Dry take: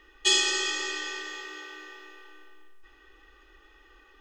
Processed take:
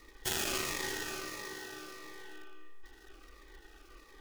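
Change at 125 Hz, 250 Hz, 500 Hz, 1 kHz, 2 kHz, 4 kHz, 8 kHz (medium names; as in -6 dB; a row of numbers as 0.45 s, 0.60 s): no reading, -2.0 dB, -4.0 dB, -4.0 dB, -8.5 dB, -13.0 dB, -8.5 dB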